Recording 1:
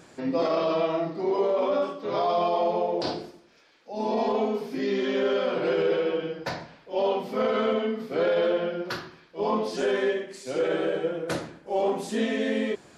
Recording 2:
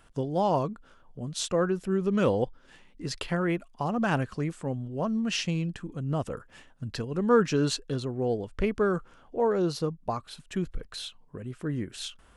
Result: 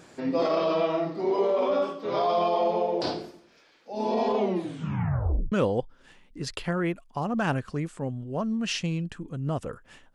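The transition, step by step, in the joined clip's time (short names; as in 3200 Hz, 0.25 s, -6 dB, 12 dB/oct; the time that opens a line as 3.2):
recording 1
4.37 tape stop 1.15 s
5.52 switch to recording 2 from 2.16 s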